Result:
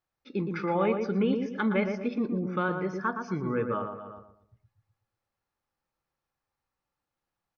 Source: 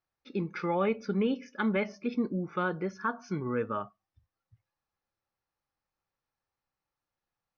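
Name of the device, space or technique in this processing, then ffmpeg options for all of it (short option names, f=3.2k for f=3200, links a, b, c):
ducked delay: -filter_complex "[0:a]highshelf=f=5.2k:g=-4.5,asplit=2[a][b];[b]adelay=117,lowpass=f=1.3k:p=1,volume=-4.5dB,asplit=2[c][d];[d]adelay=117,lowpass=f=1.3k:p=1,volume=0.37,asplit=2[e][f];[f]adelay=117,lowpass=f=1.3k:p=1,volume=0.37,asplit=2[g][h];[h]adelay=117,lowpass=f=1.3k:p=1,volume=0.37,asplit=2[i][j];[j]adelay=117,lowpass=f=1.3k:p=1,volume=0.37[k];[a][c][e][g][i][k]amix=inputs=6:normalize=0,asplit=3[l][m][n];[m]adelay=255,volume=-8.5dB[o];[n]apad=whole_len=371070[p];[o][p]sidechaincompress=threshold=-50dB:ratio=4:attack=7.5:release=114[q];[l][q]amix=inputs=2:normalize=0,volume=1.5dB"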